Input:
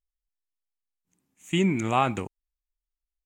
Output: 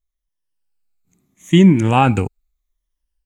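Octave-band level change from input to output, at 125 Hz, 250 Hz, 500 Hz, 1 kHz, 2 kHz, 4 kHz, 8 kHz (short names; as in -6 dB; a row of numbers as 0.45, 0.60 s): +15.0, +13.5, +9.5, +8.5, +7.5, +8.5, +5.5 dB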